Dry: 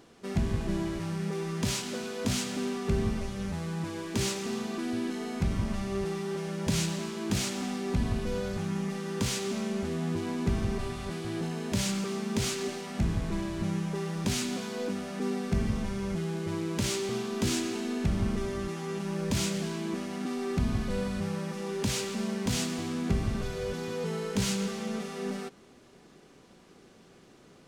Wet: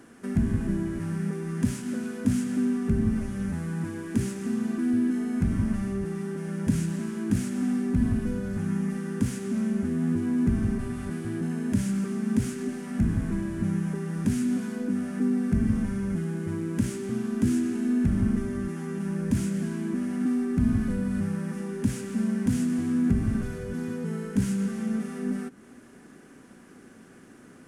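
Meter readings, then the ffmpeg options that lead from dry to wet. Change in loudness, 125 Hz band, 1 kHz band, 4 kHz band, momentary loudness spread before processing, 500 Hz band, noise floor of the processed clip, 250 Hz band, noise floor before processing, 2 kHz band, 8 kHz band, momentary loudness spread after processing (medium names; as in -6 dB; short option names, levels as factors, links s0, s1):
+4.0 dB, +3.5 dB, -5.0 dB, under -10 dB, 5 LU, -2.5 dB, -51 dBFS, +7.0 dB, -56 dBFS, -2.0 dB, -6.0 dB, 7 LU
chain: -filter_complex "[0:a]acrossover=split=330[s0][s1];[s1]acompressor=threshold=0.00398:ratio=2.5[s2];[s0][s2]amix=inputs=2:normalize=0,equalizer=f=100:t=o:w=0.67:g=4,equalizer=f=250:t=o:w=0.67:g=11,equalizer=f=1600:t=o:w=0.67:g=10,equalizer=f=4000:t=o:w=0.67:g=-7,equalizer=f=10000:t=o:w=0.67:g=11"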